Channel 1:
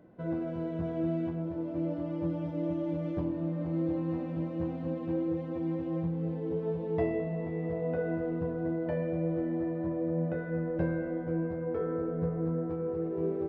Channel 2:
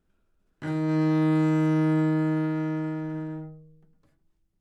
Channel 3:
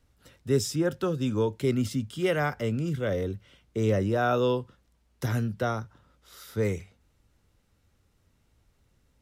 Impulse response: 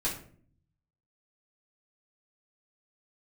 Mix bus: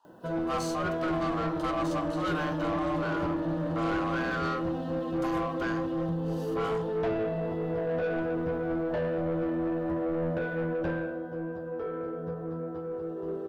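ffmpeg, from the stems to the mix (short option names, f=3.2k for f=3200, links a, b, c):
-filter_complex "[0:a]aemphasis=mode=production:type=75kf,adelay=50,volume=-5.5dB,afade=t=out:st=10.7:d=0.52:silence=0.421697[a];[1:a]alimiter=level_in=2dB:limit=-24dB:level=0:latency=1,volume=-2dB,adelay=400,volume=-11.5dB[b];[2:a]aeval=exprs='val(0)*sin(2*PI*910*n/s)':c=same,volume=-15dB,asplit=2[c][d];[d]volume=-12dB[e];[3:a]atrim=start_sample=2205[f];[e][f]afir=irnorm=-1:irlink=0[g];[a][b][c][g]amix=inputs=4:normalize=0,asuperstop=centerf=2200:order=4:qfactor=2.3,asplit=2[h][i];[i]highpass=f=720:p=1,volume=22dB,asoftclip=type=tanh:threshold=-22dB[j];[h][j]amix=inputs=2:normalize=0,lowpass=f=3.9k:p=1,volume=-6dB,lowshelf=f=140:g=8"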